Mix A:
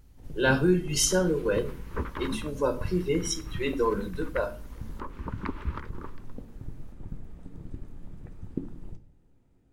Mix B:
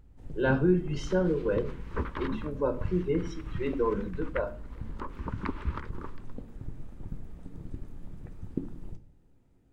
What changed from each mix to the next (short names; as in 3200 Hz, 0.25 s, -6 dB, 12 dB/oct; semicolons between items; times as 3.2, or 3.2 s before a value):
speech: add tape spacing loss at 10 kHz 38 dB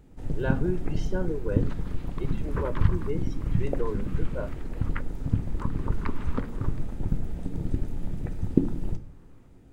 speech: send off; first sound +12.0 dB; second sound: entry +0.60 s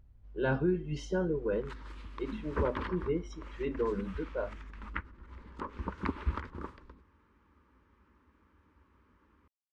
first sound: muted; reverb: off